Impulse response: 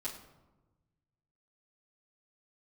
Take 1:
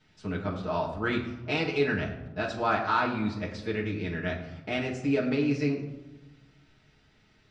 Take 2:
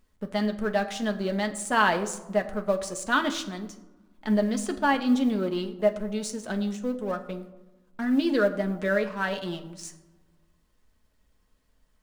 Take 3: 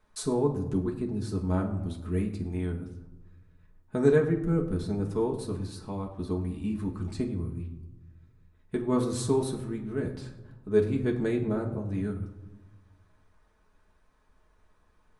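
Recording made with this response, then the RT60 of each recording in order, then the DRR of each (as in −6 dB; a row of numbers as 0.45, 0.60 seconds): 1; 1.1, 1.2, 1.1 seconds; −9.0, 4.5, −0.5 decibels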